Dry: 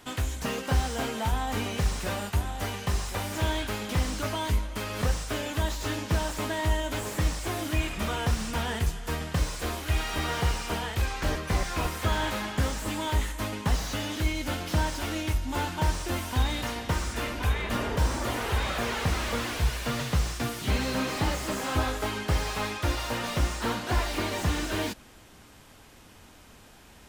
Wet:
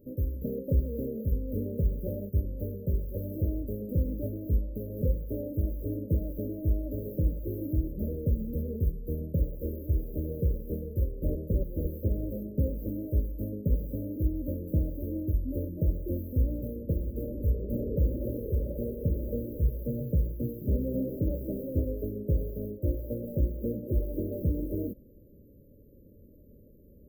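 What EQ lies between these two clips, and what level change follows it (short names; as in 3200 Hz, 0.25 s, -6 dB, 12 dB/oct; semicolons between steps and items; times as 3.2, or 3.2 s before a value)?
brick-wall FIR band-stop 610–13000 Hz; 0.0 dB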